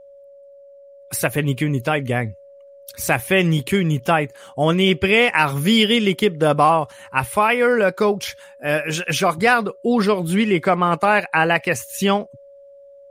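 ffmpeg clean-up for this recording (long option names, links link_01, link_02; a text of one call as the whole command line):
ffmpeg -i in.wav -af "bandreject=frequency=560:width=30" out.wav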